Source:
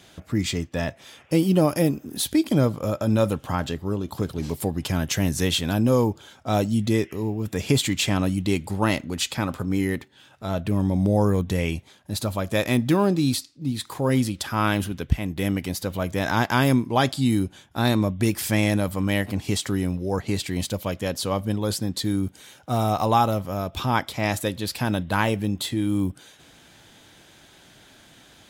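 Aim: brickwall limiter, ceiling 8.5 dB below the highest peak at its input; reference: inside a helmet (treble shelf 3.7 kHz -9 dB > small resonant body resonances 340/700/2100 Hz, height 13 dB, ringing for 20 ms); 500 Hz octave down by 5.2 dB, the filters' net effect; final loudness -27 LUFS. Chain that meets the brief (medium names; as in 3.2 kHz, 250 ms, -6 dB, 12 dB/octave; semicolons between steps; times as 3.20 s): peaking EQ 500 Hz -6.5 dB; peak limiter -15.5 dBFS; treble shelf 3.7 kHz -9 dB; small resonant body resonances 340/700/2100 Hz, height 13 dB, ringing for 20 ms; trim -6 dB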